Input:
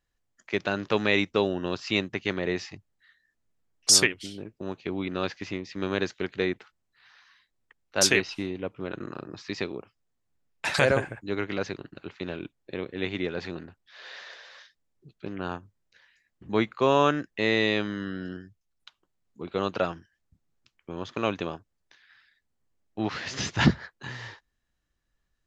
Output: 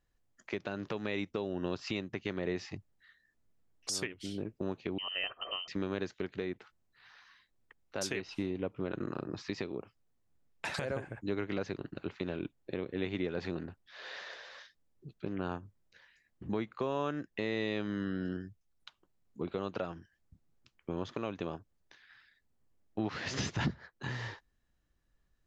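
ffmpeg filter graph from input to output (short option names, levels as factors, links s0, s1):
-filter_complex "[0:a]asettb=1/sr,asplit=3[s0][s1][s2];[s0]atrim=end=4.984[s3];[s1]atrim=start=4.98:end=5.68,asetpts=PTS-STARTPTS,afade=t=in:d=0.004:c=qsin,afade=t=out:st=0.696:d=0.004:c=qsin,equalizer=f=1100:w=0.7:g=-5.5,aecho=1:1:1.5:0.53,atrim=end_sample=30870,lowpass=f=2700:t=q:w=0.5098,lowpass=f=2700:t=q:w=0.6013,lowpass=f=2700:t=q:w=0.9,lowpass=f=2700:t=q:w=2.563,afreqshift=-3200[s4];[s2]atrim=start=5.676[s5];[s3][s4]acrossfade=d=0.004:c1=hsin:c2=qsin[s6];[s6][s5]acrossfade=d=0.004:c1=qsin:c2=hsin,tiltshelf=f=970:g=3,acompressor=threshold=0.0251:ratio=3,alimiter=limit=0.0841:level=0:latency=1:release=246"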